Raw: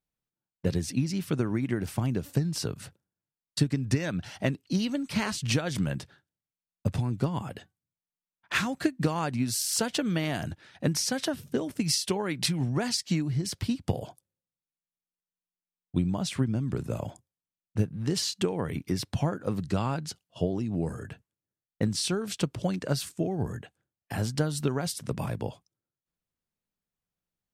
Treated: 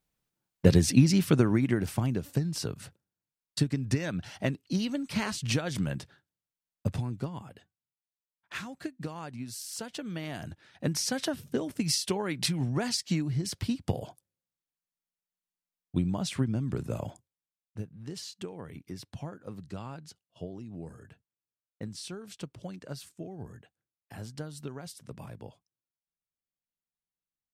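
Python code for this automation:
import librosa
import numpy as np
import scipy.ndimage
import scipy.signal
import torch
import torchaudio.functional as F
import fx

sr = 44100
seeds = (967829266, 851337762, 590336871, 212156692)

y = fx.gain(x, sr, db=fx.line((1.08, 7.5), (2.25, -2.0), (6.89, -2.0), (7.53, -11.0), (9.86, -11.0), (11.09, -1.5), (17.08, -1.5), (17.83, -12.0)))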